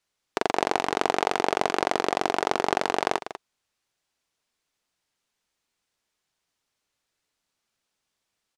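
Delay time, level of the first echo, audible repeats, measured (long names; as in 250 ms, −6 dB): 194 ms, −12.0 dB, 1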